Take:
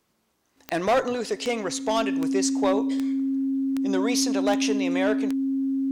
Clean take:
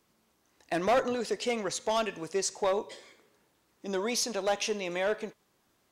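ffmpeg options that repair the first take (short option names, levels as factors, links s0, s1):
-af "adeclick=t=4,bandreject=f=270:w=30,asetnsamples=n=441:p=0,asendcmd='0.57 volume volume -4dB',volume=1"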